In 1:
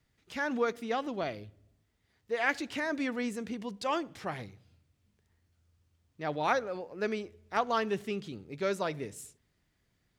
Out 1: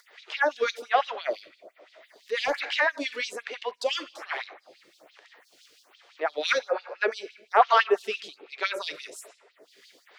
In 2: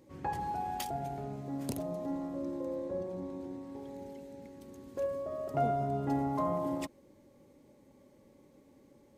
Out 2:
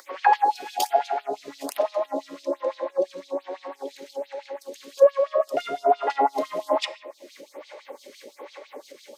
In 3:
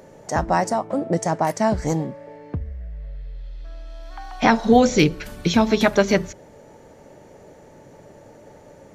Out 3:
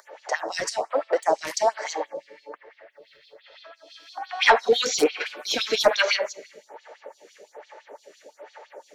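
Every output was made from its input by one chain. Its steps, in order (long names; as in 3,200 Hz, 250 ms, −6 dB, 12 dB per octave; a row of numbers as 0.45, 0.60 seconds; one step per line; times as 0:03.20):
high-shelf EQ 2,200 Hz +9.5 dB
rectangular room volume 780 cubic metres, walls mixed, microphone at 0.37 metres
auto-filter high-pass sine 5.9 Hz 430–4,300 Hz
upward compression, threshold −42 dBFS
three-way crossover with the lows and the highs turned down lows −14 dB, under 250 Hz, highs −14 dB, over 5,200 Hz
soft clipping −9.5 dBFS
phaser with staggered stages 1.2 Hz
normalise the peak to −6 dBFS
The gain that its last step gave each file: +6.5, +14.0, +1.5 decibels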